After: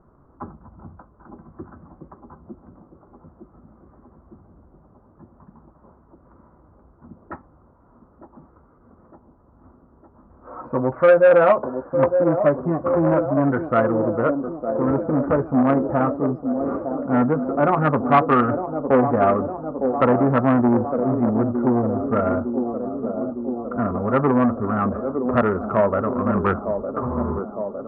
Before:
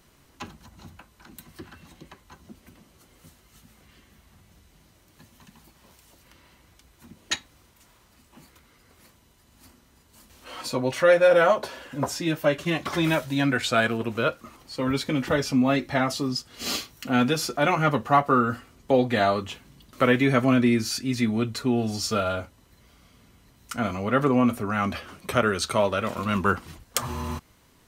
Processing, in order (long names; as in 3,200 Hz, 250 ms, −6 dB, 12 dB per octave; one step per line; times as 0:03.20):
adaptive Wiener filter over 9 samples
elliptic low-pass filter 1,300 Hz, stop band 60 dB
on a send: delay with a band-pass on its return 908 ms, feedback 68%, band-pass 410 Hz, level −7 dB
on the sum: saturating transformer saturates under 770 Hz
level +6 dB